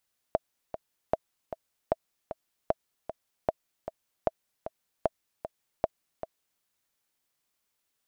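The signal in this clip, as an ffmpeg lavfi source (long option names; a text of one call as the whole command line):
ffmpeg -f lavfi -i "aevalsrc='pow(10,(-10.5-11*gte(mod(t,2*60/153),60/153))/20)*sin(2*PI*646*mod(t,60/153))*exp(-6.91*mod(t,60/153)/0.03)':duration=6.27:sample_rate=44100" out.wav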